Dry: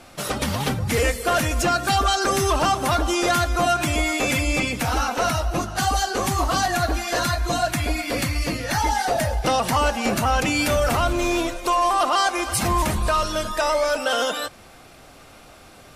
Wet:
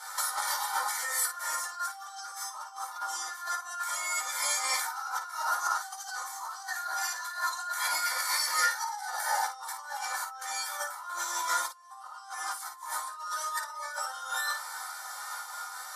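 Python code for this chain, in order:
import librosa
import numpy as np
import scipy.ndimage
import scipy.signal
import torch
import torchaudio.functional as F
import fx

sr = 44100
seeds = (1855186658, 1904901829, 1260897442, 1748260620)

p1 = fx.octave_divider(x, sr, octaves=1, level_db=-1.0)
p2 = scipy.signal.sosfilt(scipy.signal.butter(4, 840.0, 'highpass', fs=sr, output='sos'), p1)
p3 = fx.fixed_phaser(p2, sr, hz=1100.0, stages=4)
p4 = fx.room_shoebox(p3, sr, seeds[0], volume_m3=140.0, walls='furnished', distance_m=2.0)
p5 = fx.over_compress(p4, sr, threshold_db=-35.0, ratio=-1.0)
p6 = p5 + 0.65 * np.pad(p5, (int(2.2 * sr / 1000.0), 0))[:len(p5)]
p7 = p6 + fx.room_early_taps(p6, sr, ms=(12, 55), db=(-6.0, -8.5), dry=0)
p8 = fx.am_noise(p7, sr, seeds[1], hz=5.7, depth_pct=60)
y = F.gain(torch.from_numpy(p8), -1.0).numpy()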